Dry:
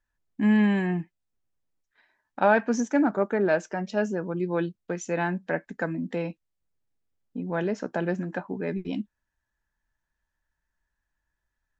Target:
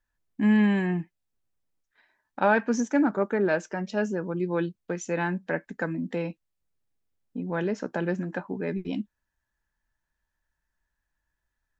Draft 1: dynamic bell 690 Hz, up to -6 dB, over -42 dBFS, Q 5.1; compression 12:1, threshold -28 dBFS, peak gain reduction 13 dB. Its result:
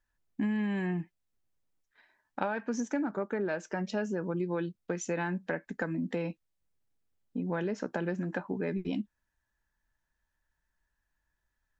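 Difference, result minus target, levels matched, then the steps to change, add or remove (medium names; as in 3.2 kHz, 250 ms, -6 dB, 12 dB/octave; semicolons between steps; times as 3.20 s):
compression: peak gain reduction +13 dB
remove: compression 12:1, threshold -28 dBFS, peak gain reduction 13 dB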